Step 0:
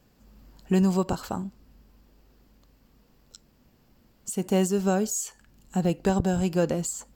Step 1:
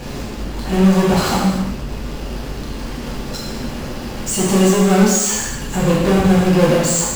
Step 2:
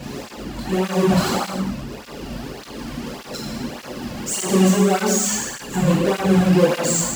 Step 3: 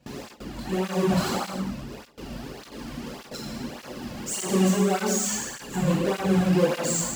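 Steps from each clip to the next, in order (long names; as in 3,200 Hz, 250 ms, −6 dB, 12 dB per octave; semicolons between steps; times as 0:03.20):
high-frequency loss of the air 57 metres; power curve on the samples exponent 0.35; reverb whose tail is shaped and stops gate 380 ms falling, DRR −7 dB; level −4 dB
through-zero flanger with one copy inverted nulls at 1.7 Hz, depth 2.6 ms
noise gate with hold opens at −24 dBFS; level −6 dB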